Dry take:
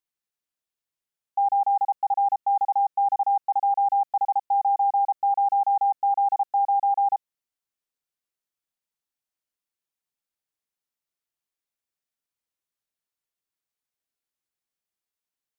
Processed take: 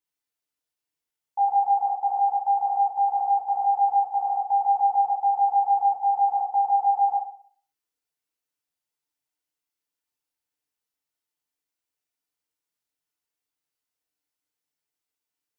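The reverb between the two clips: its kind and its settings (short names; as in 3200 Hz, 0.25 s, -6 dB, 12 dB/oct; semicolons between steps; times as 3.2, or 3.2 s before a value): FDN reverb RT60 0.5 s, low-frequency decay 0.75×, high-frequency decay 1×, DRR -5 dB; gain -4.5 dB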